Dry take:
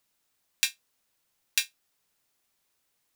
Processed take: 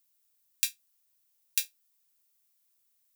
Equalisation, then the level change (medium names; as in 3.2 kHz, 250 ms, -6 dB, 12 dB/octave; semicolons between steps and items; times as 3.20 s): treble shelf 3.1 kHz +10 dB; treble shelf 11 kHz +10.5 dB; -13.0 dB